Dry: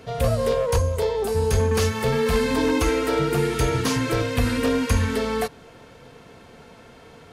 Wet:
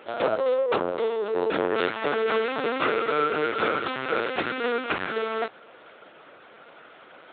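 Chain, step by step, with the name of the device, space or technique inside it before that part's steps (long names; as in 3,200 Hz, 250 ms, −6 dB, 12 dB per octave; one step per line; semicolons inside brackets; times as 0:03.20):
talking toy (linear-prediction vocoder at 8 kHz pitch kept; high-pass filter 400 Hz 12 dB per octave; parametric band 1,400 Hz +7 dB 0.33 octaves)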